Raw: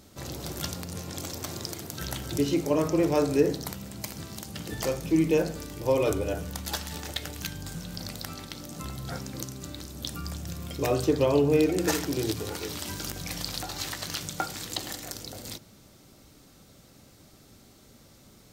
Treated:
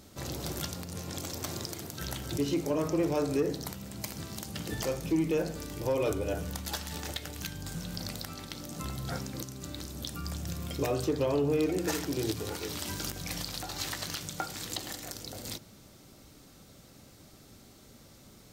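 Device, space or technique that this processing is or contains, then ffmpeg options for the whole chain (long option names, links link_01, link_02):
soft clipper into limiter: -af "asoftclip=type=tanh:threshold=-13.5dB,alimiter=limit=-20.5dB:level=0:latency=1:release=383"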